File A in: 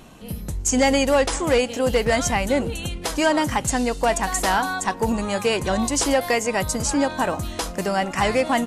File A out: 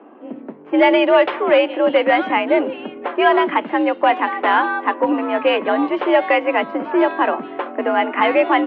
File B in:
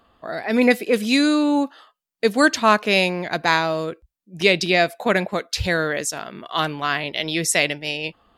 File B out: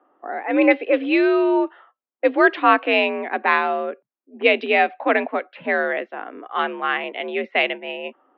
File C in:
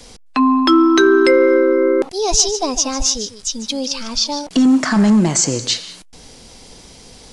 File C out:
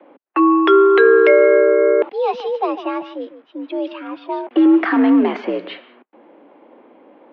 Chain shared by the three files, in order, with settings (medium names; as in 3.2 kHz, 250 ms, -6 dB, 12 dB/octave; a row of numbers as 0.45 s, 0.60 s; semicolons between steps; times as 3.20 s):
mistuned SSB +63 Hz 190–3000 Hz; level-controlled noise filter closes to 1.1 kHz, open at -11.5 dBFS; peak normalisation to -1.5 dBFS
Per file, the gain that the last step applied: +5.5 dB, +1.0 dB, +0.5 dB